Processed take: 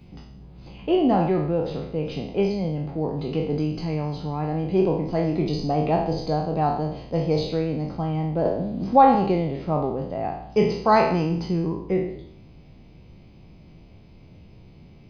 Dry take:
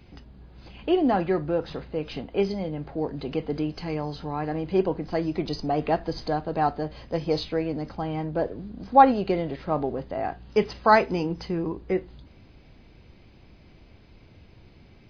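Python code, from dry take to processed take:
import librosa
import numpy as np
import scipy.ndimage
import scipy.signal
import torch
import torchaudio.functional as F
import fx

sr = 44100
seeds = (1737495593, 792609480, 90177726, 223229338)

y = fx.spec_trails(x, sr, decay_s=0.7)
y = fx.graphic_eq_15(y, sr, hz=(160, 1600, 4000), db=(7, -9, -4))
y = fx.band_squash(y, sr, depth_pct=40, at=(8.45, 9.15))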